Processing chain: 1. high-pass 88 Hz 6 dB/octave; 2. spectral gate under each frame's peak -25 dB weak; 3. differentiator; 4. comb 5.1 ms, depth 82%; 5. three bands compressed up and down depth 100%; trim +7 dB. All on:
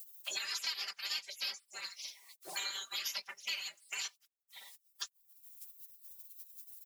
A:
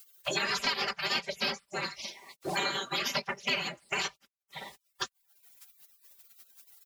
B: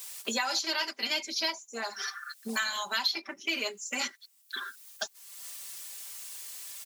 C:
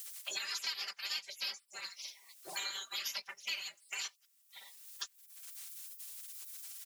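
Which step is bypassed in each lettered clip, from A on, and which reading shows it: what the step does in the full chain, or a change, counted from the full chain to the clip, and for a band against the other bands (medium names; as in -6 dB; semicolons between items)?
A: 3, 250 Hz band +15.0 dB; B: 2, 250 Hz band +17.0 dB; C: 1, momentary loudness spread change -3 LU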